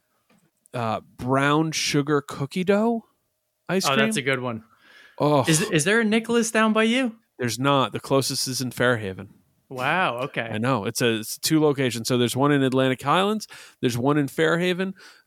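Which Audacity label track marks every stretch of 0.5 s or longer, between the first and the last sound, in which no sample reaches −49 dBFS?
3.040000	3.690000	silence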